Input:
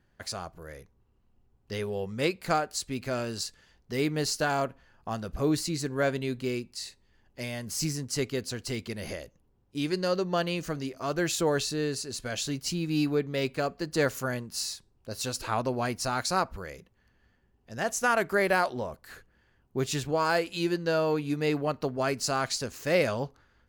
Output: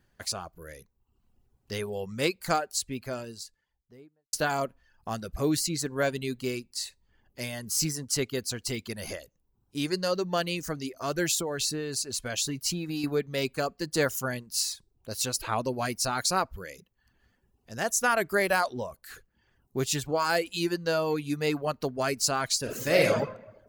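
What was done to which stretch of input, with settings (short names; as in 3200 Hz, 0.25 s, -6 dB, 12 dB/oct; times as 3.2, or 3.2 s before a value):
2.49–4.33 studio fade out
11.32–13.04 compressor, threshold -27 dBFS
22.6–23.17 reverb throw, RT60 0.98 s, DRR -1.5 dB
whole clip: reverb removal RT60 0.59 s; high shelf 5100 Hz +8.5 dB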